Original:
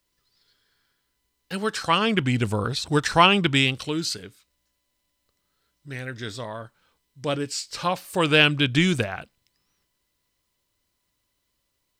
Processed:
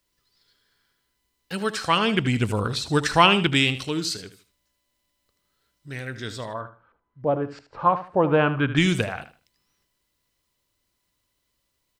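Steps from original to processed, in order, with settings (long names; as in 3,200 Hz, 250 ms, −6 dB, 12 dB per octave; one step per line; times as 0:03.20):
0:06.53–0:08.76: auto-filter low-pass saw up 4.8 Hz → 1.1 Hz 620–1,600 Hz
repeating echo 77 ms, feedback 24%, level −13 dB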